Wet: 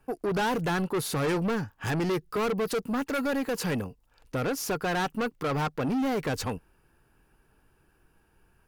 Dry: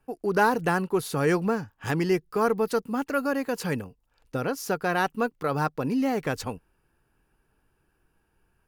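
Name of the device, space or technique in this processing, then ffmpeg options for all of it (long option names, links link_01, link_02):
saturation between pre-emphasis and de-emphasis: -af "highshelf=frequency=12000:gain=10.5,asoftclip=type=tanh:threshold=-29.5dB,highshelf=frequency=12000:gain=-10.5,volume=5dB"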